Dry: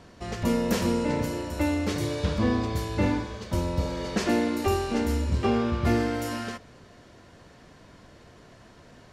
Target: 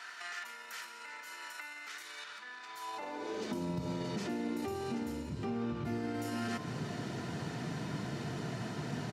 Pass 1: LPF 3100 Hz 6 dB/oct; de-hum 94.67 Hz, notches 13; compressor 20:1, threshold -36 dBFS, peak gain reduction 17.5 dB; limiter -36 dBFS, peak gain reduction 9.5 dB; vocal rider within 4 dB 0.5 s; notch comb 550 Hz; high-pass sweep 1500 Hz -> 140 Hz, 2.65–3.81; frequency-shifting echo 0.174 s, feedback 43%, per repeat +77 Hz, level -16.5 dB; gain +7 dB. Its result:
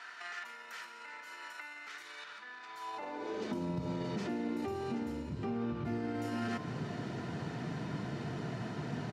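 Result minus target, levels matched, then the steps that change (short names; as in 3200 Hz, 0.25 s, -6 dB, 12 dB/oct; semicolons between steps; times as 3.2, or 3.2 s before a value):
4000 Hz band -3.0 dB
remove: LPF 3100 Hz 6 dB/oct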